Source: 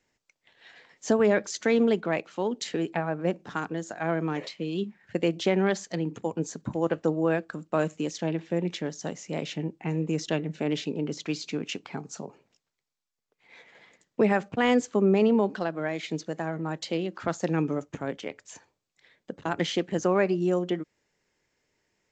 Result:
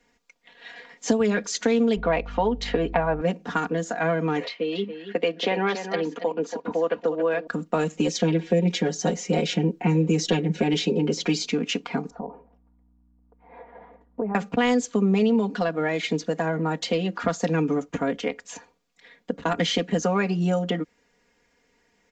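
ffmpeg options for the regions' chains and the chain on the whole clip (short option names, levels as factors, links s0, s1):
-filter_complex "[0:a]asettb=1/sr,asplit=3[s0][s1][s2];[s0]atrim=end=1.964[s3];[s1]atrim=start=1.96:end=3.21,asetpts=PTS-STARTPTS,afade=t=in:d=0.004:c=qsin,afade=t=out:st=1.246:d=0.004:c=qsin,lowpass=3700,equalizer=f=810:w=0.86:g=9,aeval=exprs='val(0)+0.00631*(sin(2*PI*50*n/s)+sin(2*PI*2*50*n/s)/2+sin(2*PI*3*50*n/s)/3+sin(2*PI*4*50*n/s)/4+sin(2*PI*5*50*n/s)/5)':c=same[s4];[s2]atrim=start=3.206[s5];[s3][s4]acrossfade=d=0.004:c1=hsin:c2=qsin[s6];[s6][s5]acrossfade=d=0.004:c1=qsin:c2=hsin,asettb=1/sr,asplit=3[s7][s8][s9];[s7]atrim=end=4.444[s10];[s8]atrim=start=4.44:end=7.47,asetpts=PTS-STARTPTS,afade=t=in:d=0.004:c=qsin,afade=t=out:st=3.026:d=0.004:c=qsin,acrossover=split=300 4900:gain=0.126 1 0.0794[s11][s12][s13];[s11][s12][s13]amix=inputs=3:normalize=0,aecho=1:1:280:0.266,atrim=end_sample=133623[s14];[s9]atrim=start=7.466[s15];[s10][s14]acrossfade=d=0.004:c1=hsin:c2=qsin[s16];[s16][s15]acrossfade=d=0.004:c1=qsin:c2=hsin,asettb=1/sr,asplit=3[s17][s18][s19];[s17]atrim=end=7.974[s20];[s18]atrim=start=7.97:end=11.46,asetpts=PTS-STARTPTS,afade=t=in:d=0.004:c=qsin,afade=t=out:st=3.486:d=0.004:c=qsin,equalizer=f=400:t=o:w=0.97:g=7.5,aecho=1:1:5.5:0.96,atrim=end_sample=153909[s21];[s19]atrim=start=11.456[s22];[s20][s21]acrossfade=d=0.004:c1=hsin:c2=qsin[s23];[s23][s22]acrossfade=d=0.004:c1=qsin:c2=hsin,asettb=1/sr,asplit=3[s24][s25][s26];[s24]atrim=end=12.104[s27];[s25]atrim=start=12.1:end=14.35,asetpts=PTS-STARTPTS,afade=t=in:d=0.004:c=qsin,afade=t=out:st=2.246:d=0.004:c=qsin,acompressor=threshold=0.00794:ratio=3:attack=3.2:release=140:knee=1:detection=peak,lowpass=f=870:t=q:w=2.1,aeval=exprs='val(0)+0.000355*(sin(2*PI*60*n/s)+sin(2*PI*2*60*n/s)/2+sin(2*PI*3*60*n/s)/3+sin(2*PI*4*60*n/s)/4+sin(2*PI*5*60*n/s)/5)':c=same[s28];[s26]atrim=start=14.346[s29];[s27][s28]acrossfade=d=0.004:c1=hsin:c2=qsin[s30];[s30][s29]acrossfade=d=0.004:c1=qsin:c2=hsin,highshelf=f=4600:g=-6.5,aecho=1:1:4.2:0.88,acrossover=split=120|3000[s31][s32][s33];[s32]acompressor=threshold=0.0355:ratio=4[s34];[s31][s34][s33]amix=inputs=3:normalize=0,volume=2.37"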